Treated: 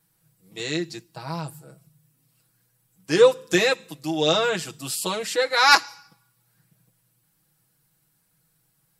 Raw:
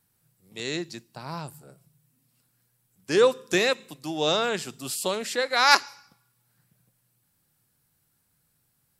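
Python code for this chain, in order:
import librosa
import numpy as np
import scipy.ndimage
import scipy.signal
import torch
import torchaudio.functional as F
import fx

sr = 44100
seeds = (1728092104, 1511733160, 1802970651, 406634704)

y = x + 0.95 * np.pad(x, (int(6.2 * sr / 1000.0), 0))[:len(x)]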